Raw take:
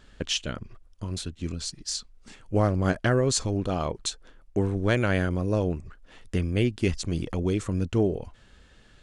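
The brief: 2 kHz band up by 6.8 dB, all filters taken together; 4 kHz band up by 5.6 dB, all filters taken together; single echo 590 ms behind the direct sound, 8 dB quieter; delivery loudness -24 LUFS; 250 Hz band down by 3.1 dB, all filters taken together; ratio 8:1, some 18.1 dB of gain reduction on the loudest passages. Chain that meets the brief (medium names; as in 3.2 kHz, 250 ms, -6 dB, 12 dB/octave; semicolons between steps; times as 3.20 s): peaking EQ 250 Hz -4.5 dB; peaking EQ 2 kHz +8 dB; peaking EQ 4 kHz +4.5 dB; compression 8:1, threshold -37 dBFS; delay 590 ms -8 dB; trim +17 dB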